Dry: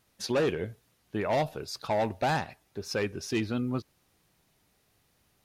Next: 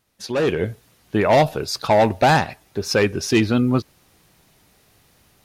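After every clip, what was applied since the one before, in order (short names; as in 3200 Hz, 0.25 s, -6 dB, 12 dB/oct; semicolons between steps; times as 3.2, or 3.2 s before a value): AGC gain up to 12.5 dB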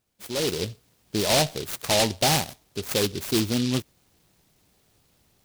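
noise-modulated delay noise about 3800 Hz, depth 0.19 ms; gain -6.5 dB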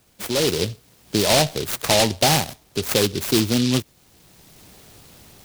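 three-band squash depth 40%; gain +5 dB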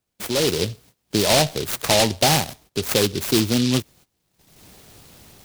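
gate -48 dBFS, range -20 dB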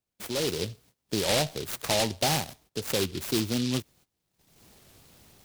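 record warp 33 1/3 rpm, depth 160 cents; gain -8.5 dB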